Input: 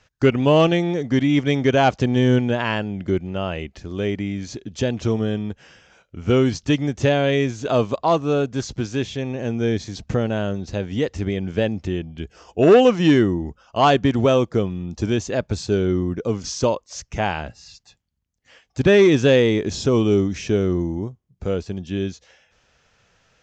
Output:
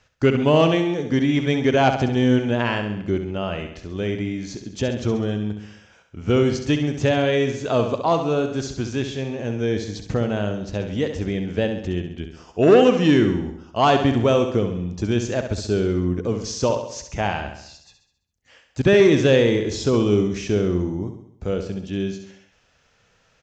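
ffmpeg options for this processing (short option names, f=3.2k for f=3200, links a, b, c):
-af "aecho=1:1:67|134|201|268|335|402:0.398|0.211|0.112|0.0593|0.0314|0.0166,volume=-1.5dB"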